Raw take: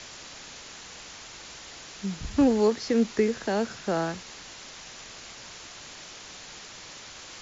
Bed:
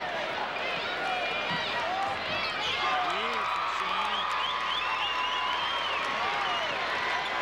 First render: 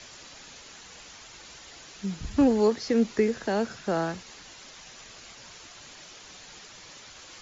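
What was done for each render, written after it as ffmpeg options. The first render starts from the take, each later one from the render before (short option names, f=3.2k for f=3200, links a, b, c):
-af "afftdn=nr=6:nf=-45"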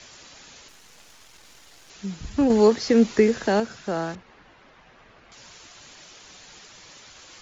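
-filter_complex "[0:a]asettb=1/sr,asplit=3[a][b][c];[a]atrim=end=0.684[d];[b]atrim=start=0.68:end=1.9,asetpts=PTS-STARTPTS,afade=t=in:d=0.004:c=qsin,afade=t=out:st=1.216:d=0.004:c=qsin,aeval=exprs='max(val(0),0)':c=same[e];[c]atrim=start=1.896[f];[d][e]acrossfade=d=0.004:c1=hsin:c2=qsin[g];[g][f]acrossfade=d=0.004:c1=qsin:c2=hsin,asettb=1/sr,asplit=3[h][i][j];[h]atrim=end=4.154[k];[i]atrim=start=4.15:end=5.32,asetpts=PTS-STARTPTS,afade=t=in:d=0.004:c=qsin,afade=t=out:st=1.166:d=0.004:c=qsin,lowpass=1.8k[l];[j]atrim=start=5.316[m];[k][l]acrossfade=d=0.004:c1=hsin:c2=qsin[n];[n][m]acrossfade=d=0.004:c1=qsin:c2=hsin,asplit=3[o][p][q];[o]atrim=end=2.502[r];[p]atrim=start=2.498:end=3.602,asetpts=PTS-STARTPTS,volume=6dB[s];[q]atrim=start=3.598[t];[r][s]acrossfade=d=0.004:c1=hsin:c2=hsin[u];[u][t]acrossfade=d=0.004:c1=hsin:c2=hsin"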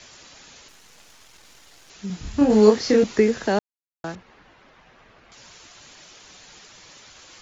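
-filter_complex "[0:a]asettb=1/sr,asplit=3[a][b][c];[a]atrim=end=2.074[d];[b]atrim=start=2.07:end=3.04,asetpts=PTS-STARTPTS,afade=t=in:d=0.004:c=qsin,afade=t=out:st=0.966:d=0.004:c=qsin,asplit=2[e][f];[f]adelay=28,volume=-2dB[g];[e][g]amix=inputs=2:normalize=0,atrim=end_sample=42777[h];[c]atrim=start=3.036[i];[d][h]acrossfade=d=0.004:c1=hsin:c2=qsin[j];[j][i]acrossfade=d=0.004:c1=qsin:c2=hsin,asplit=3[k][l][m];[k]atrim=end=3.59,asetpts=PTS-STARTPTS,afade=t=out:st=3.586:d=0.004:c=hsin[n];[l]atrim=start=3.59:end=4.04,asetpts=PTS-STARTPTS,volume=0[o];[m]atrim=start=4.04,asetpts=PTS-STARTPTS,afade=t=in:d=0.004:c=hsin[p];[n][o][p]concat=n=3:v=0:a=1"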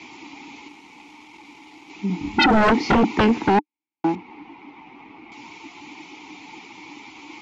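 -filter_complex "[0:a]asplit=3[a][b][c];[a]bandpass=f=300:t=q:w=8,volume=0dB[d];[b]bandpass=f=870:t=q:w=8,volume=-6dB[e];[c]bandpass=f=2.24k:t=q:w=8,volume=-9dB[f];[d][e][f]amix=inputs=3:normalize=0,aeval=exprs='0.251*sin(PI/2*8.91*val(0)/0.251)':c=same"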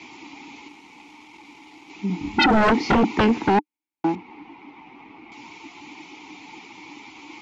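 -af "volume=-1dB"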